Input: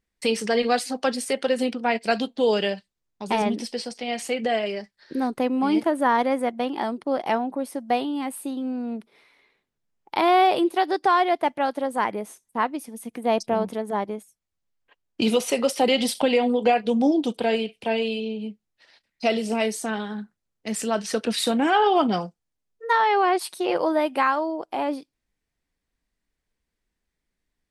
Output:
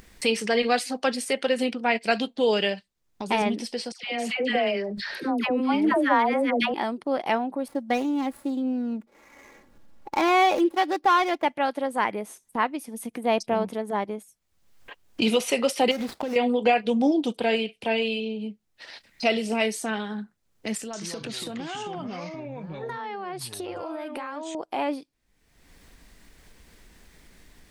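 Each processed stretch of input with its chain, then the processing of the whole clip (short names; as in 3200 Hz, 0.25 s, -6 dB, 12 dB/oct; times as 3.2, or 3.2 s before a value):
3.92–6.74 high shelf 5500 Hz -10 dB + dispersion lows, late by 0.117 s, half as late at 930 Hz + sustainer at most 31 dB/s
7.68–11.45 median filter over 15 samples + comb 3.6 ms, depth 52%
15.91–16.36 median filter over 15 samples + gate -42 dBFS, range -8 dB + compressor 5:1, threshold -24 dBFS
20.77–24.55 compressor 10:1, threshold -32 dBFS + echoes that change speed 0.162 s, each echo -5 st, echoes 2, each echo -6 dB
whole clip: dynamic EQ 2400 Hz, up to +5 dB, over -40 dBFS, Q 1.4; upward compressor, threshold -27 dBFS; gain -1.5 dB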